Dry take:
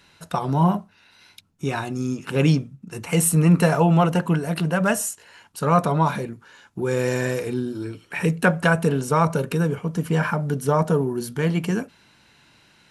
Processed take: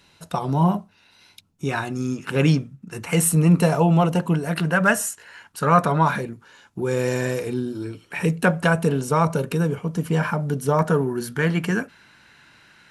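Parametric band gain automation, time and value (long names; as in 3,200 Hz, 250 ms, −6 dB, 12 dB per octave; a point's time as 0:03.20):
parametric band 1,600 Hz 0.89 octaves
−4 dB
from 0:01.69 +4 dB
from 0:03.33 −5 dB
from 0:04.46 +7 dB
from 0:06.21 −1.5 dB
from 0:10.79 +8.5 dB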